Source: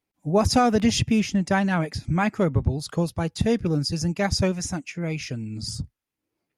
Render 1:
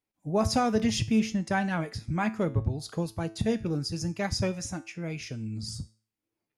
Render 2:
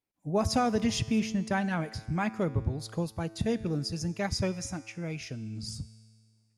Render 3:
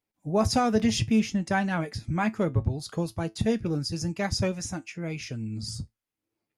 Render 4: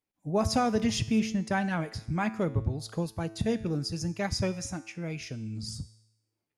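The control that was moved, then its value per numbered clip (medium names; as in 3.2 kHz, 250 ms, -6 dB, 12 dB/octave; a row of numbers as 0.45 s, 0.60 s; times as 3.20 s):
feedback comb, decay: 0.39 s, 1.9 s, 0.16 s, 0.86 s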